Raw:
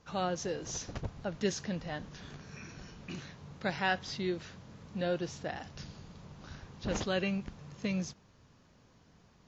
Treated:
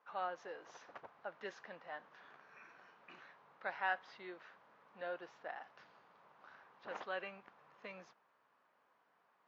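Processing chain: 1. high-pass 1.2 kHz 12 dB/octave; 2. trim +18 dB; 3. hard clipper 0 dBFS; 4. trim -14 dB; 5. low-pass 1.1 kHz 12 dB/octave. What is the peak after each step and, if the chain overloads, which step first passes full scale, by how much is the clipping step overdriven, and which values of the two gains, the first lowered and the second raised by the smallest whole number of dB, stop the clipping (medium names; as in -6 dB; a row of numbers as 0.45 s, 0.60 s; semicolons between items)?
-21.0 dBFS, -3.0 dBFS, -3.0 dBFS, -17.0 dBFS, -23.5 dBFS; nothing clips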